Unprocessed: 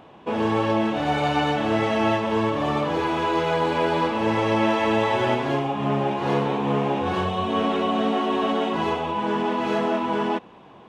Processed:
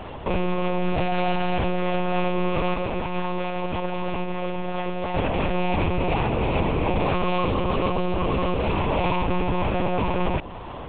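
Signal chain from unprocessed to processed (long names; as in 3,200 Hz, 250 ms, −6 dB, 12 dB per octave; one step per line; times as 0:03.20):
loose part that buzzes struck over −39 dBFS, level −17 dBFS
dynamic equaliser 2,200 Hz, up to −7 dB, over −39 dBFS, Q 0.73
compressor whose output falls as the input rises −28 dBFS, ratio −1
brickwall limiter −22 dBFS, peak gain reduction 8.5 dB
0:02.74–0:05.14: flanger 1.5 Hz, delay 2.2 ms, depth 5.6 ms, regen +52%
one-pitch LPC vocoder at 8 kHz 180 Hz
level +8 dB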